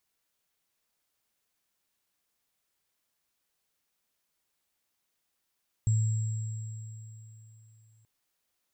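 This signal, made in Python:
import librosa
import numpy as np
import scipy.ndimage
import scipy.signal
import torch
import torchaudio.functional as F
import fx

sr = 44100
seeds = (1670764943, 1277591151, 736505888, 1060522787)

y = fx.additive_free(sr, length_s=2.18, hz=110.0, level_db=-21, upper_db=(-17.5,), decay_s=3.29, upper_decays_s=(3.85,), upper_hz=(7620.0,))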